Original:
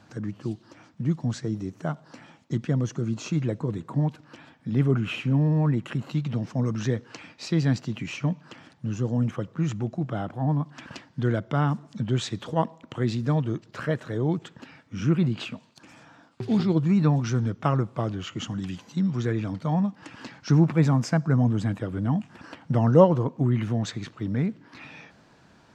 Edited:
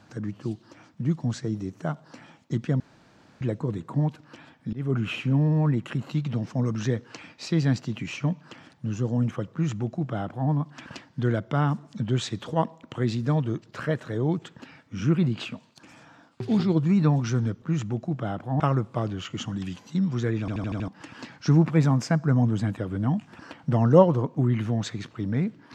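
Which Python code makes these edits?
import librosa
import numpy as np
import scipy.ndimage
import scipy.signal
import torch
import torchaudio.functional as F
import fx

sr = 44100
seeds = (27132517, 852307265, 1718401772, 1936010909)

y = fx.edit(x, sr, fx.room_tone_fill(start_s=2.8, length_s=0.61),
    fx.fade_in_from(start_s=4.73, length_s=0.28, floor_db=-23.0),
    fx.duplicate(start_s=9.52, length_s=0.98, to_s=17.62),
    fx.stutter_over(start_s=19.42, slice_s=0.08, count=6), tone=tone)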